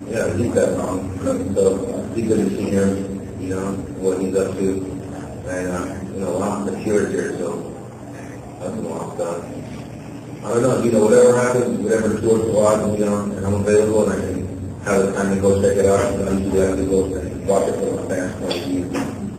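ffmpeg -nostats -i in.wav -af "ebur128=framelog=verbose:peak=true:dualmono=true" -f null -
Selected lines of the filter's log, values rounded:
Integrated loudness:
  I:         -16.7 LUFS
  Threshold: -27.1 LUFS
Loudness range:
  LRA:         7.8 LU
  Threshold: -37.0 LUFS
  LRA low:   -21.5 LUFS
  LRA high:  -13.7 LUFS
True peak:
  Peak:       -3.3 dBFS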